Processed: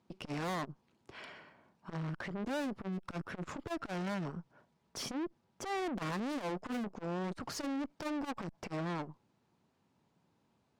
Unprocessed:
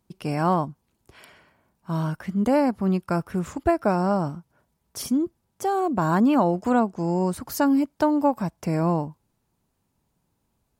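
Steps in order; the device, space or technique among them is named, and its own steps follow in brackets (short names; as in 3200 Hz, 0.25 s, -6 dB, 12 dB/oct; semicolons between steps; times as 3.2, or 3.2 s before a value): valve radio (BPF 140–4600 Hz; tube stage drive 36 dB, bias 0.4; core saturation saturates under 210 Hz); gain +2.5 dB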